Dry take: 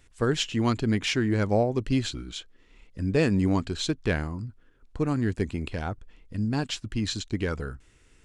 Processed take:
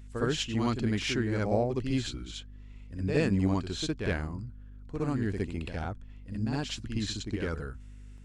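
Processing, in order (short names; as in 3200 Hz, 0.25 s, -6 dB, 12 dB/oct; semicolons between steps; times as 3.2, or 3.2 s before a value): hum 50 Hz, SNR 16 dB; reverse echo 63 ms -5.5 dB; gain -5 dB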